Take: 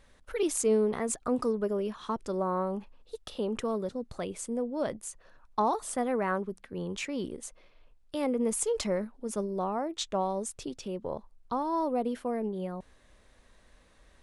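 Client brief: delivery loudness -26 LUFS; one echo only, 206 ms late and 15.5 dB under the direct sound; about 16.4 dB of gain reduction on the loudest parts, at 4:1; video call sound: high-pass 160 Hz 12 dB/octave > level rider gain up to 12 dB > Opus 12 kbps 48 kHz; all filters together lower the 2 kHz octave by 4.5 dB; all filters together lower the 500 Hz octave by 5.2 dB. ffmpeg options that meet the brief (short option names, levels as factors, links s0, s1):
-af "equalizer=f=500:t=o:g=-6,equalizer=f=2000:t=o:g=-5.5,acompressor=threshold=0.00501:ratio=4,highpass=160,aecho=1:1:206:0.168,dynaudnorm=m=3.98,volume=14.1" -ar 48000 -c:a libopus -b:a 12k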